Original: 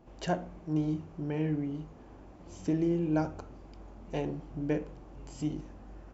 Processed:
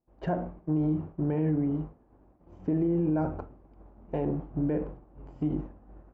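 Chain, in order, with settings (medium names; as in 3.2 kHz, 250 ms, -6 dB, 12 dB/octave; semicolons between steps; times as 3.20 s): low-pass 1.3 kHz 12 dB/octave; expander -39 dBFS; peak limiter -27.5 dBFS, peak gain reduction 9.5 dB; trim +7.5 dB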